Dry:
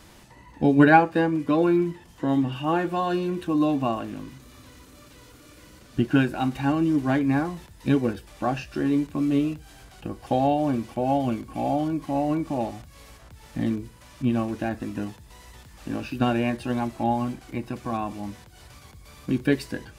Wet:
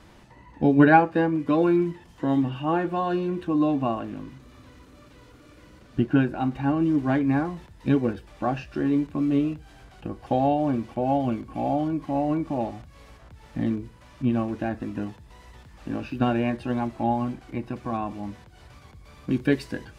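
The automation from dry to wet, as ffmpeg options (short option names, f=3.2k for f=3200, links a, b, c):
-af "asetnsamples=n=441:p=0,asendcmd='1.46 lowpass f 4500;2.49 lowpass f 2200;6.04 lowpass f 1400;6.8 lowpass f 2500;19.31 lowpass f 5000',lowpass=f=2.5k:p=1"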